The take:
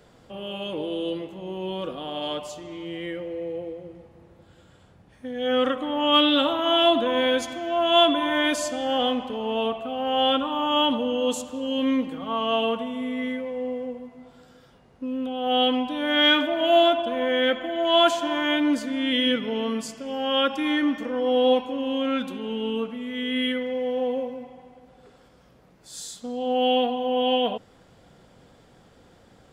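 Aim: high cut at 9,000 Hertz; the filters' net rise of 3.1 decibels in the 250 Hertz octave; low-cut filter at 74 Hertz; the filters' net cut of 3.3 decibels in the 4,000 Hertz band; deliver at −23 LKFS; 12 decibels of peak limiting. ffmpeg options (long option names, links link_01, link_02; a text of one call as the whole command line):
ffmpeg -i in.wav -af "highpass=74,lowpass=9000,equalizer=frequency=250:width_type=o:gain=3.5,equalizer=frequency=4000:width_type=o:gain=-4.5,volume=4.5dB,alimiter=limit=-14dB:level=0:latency=1" out.wav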